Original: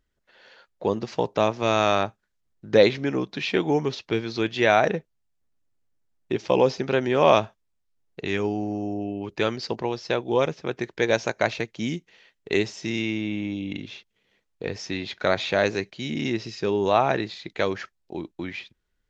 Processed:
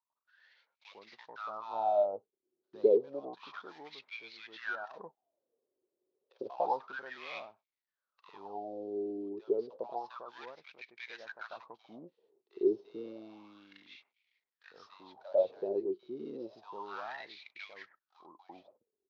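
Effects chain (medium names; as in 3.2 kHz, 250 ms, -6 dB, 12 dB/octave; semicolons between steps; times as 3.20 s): CVSD coder 32 kbps; graphic EQ 250/1000/2000/4000 Hz +3/+5/-10/+11 dB; 4.75–6.41 s: compressor with a negative ratio -24 dBFS, ratio -0.5; wah-wah 0.3 Hz 360–2300 Hz, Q 12; bands offset in time highs, lows 100 ms, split 1.1 kHz; trim +2.5 dB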